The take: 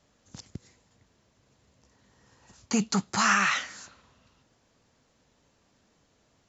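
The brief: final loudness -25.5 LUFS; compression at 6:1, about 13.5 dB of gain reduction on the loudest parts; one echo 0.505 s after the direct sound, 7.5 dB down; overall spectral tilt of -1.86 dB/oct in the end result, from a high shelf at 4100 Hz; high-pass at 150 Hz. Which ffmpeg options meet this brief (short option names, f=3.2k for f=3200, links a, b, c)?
-af "highpass=150,highshelf=f=4.1k:g=5,acompressor=threshold=-33dB:ratio=6,aecho=1:1:505:0.422,volume=12.5dB"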